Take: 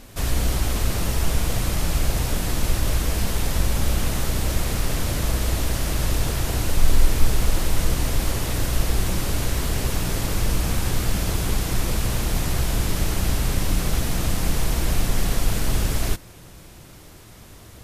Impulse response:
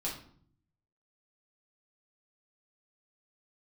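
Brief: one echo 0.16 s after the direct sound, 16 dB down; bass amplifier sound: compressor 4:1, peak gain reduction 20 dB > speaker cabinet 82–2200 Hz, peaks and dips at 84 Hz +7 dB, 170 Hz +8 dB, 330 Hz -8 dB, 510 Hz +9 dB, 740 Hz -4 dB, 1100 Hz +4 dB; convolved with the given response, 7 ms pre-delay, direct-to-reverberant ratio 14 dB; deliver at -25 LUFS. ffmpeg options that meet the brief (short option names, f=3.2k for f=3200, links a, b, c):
-filter_complex "[0:a]aecho=1:1:160:0.158,asplit=2[a][b];[1:a]atrim=start_sample=2205,adelay=7[c];[b][c]afir=irnorm=-1:irlink=0,volume=-16.5dB[d];[a][d]amix=inputs=2:normalize=0,acompressor=threshold=-30dB:ratio=4,highpass=f=82:w=0.5412,highpass=f=82:w=1.3066,equalizer=f=84:t=q:w=4:g=7,equalizer=f=170:t=q:w=4:g=8,equalizer=f=330:t=q:w=4:g=-8,equalizer=f=510:t=q:w=4:g=9,equalizer=f=740:t=q:w=4:g=-4,equalizer=f=1.1k:t=q:w=4:g=4,lowpass=f=2.2k:w=0.5412,lowpass=f=2.2k:w=1.3066,volume=12.5dB"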